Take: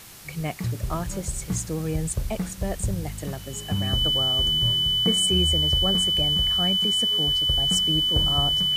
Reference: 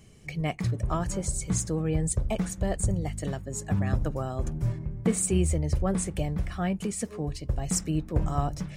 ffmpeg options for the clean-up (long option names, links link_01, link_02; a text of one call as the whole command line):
ffmpeg -i in.wav -af "bandreject=frequency=3000:width=30,afwtdn=0.0063" out.wav